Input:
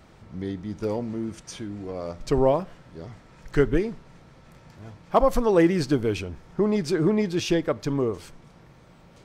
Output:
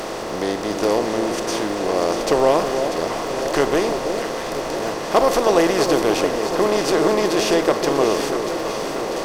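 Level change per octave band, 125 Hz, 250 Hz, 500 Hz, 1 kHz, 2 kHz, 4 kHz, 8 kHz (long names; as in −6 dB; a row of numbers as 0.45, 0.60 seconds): −3.5, +3.0, +7.5, +10.0, +10.5, +12.5, +14.0 decibels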